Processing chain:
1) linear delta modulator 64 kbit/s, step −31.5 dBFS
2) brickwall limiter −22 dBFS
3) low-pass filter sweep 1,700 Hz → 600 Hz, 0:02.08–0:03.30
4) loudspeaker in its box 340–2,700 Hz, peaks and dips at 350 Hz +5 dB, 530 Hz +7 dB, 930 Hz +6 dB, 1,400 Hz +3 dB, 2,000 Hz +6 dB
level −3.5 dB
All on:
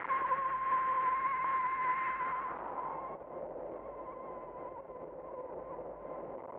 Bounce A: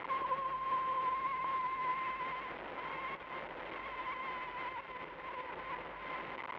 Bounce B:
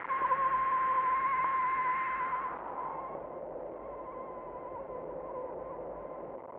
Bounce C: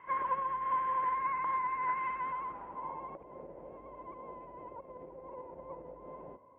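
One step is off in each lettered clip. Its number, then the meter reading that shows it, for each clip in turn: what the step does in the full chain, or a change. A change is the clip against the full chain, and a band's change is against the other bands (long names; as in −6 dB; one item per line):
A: 3, change in momentary loudness spread −5 LU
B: 2, average gain reduction 2.5 dB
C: 1, 500 Hz band −2.5 dB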